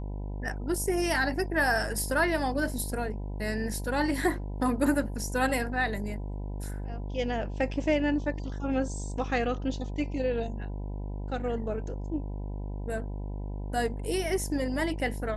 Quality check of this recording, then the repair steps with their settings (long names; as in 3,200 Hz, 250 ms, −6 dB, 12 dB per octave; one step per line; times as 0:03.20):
mains buzz 50 Hz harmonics 20 −35 dBFS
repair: hum removal 50 Hz, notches 20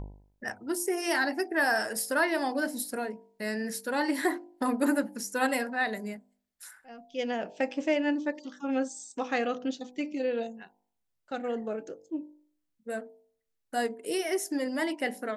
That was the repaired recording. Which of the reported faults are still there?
none of them is left